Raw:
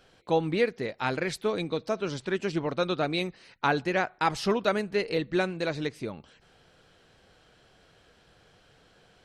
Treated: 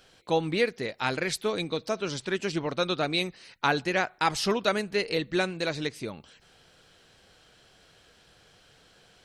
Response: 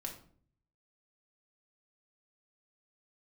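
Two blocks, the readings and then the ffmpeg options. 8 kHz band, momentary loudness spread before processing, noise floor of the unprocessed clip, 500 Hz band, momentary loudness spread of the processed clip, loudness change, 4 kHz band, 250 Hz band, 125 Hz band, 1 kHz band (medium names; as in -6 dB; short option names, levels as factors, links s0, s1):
+6.5 dB, 5 LU, -61 dBFS, -0.5 dB, 6 LU, +0.5 dB, +5.0 dB, -1.0 dB, -1.0 dB, 0.0 dB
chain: -af "highshelf=f=2600:g=8.5,volume=0.891"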